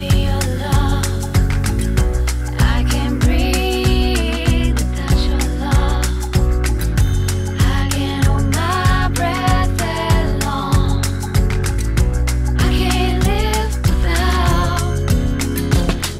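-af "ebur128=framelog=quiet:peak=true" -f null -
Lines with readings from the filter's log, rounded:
Integrated loudness:
  I:         -17.3 LUFS
  Threshold: -27.3 LUFS
Loudness range:
  LRA:         0.8 LU
  Threshold: -37.3 LUFS
  LRA low:   -17.7 LUFS
  LRA high:  -16.9 LUFS
True peak:
  Peak:       -3.0 dBFS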